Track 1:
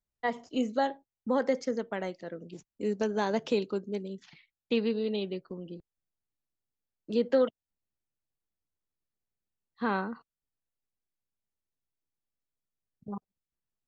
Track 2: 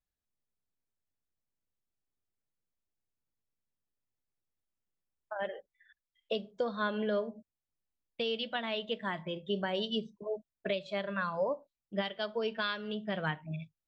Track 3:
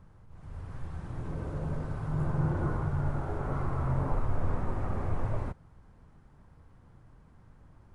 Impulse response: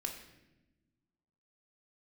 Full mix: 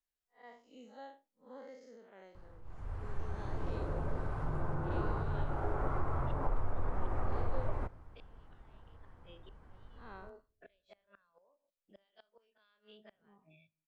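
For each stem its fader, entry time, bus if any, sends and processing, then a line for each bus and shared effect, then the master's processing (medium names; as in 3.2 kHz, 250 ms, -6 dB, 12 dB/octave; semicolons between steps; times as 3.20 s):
-16.5 dB, 0.20 s, no send, spectral blur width 129 ms
-18.5 dB, 0.00 s, send -21.5 dB, every event in the spectrogram widened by 60 ms; inverted gate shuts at -23 dBFS, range -28 dB; three bands compressed up and down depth 40%
+2.5 dB, 2.35 s, send -14.5 dB, treble shelf 3.2 kHz -11.5 dB; compression, threshold -29 dBFS, peak gain reduction 7 dB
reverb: on, RT60 1.0 s, pre-delay 3 ms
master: peaking EQ 150 Hz -10 dB 1.9 oct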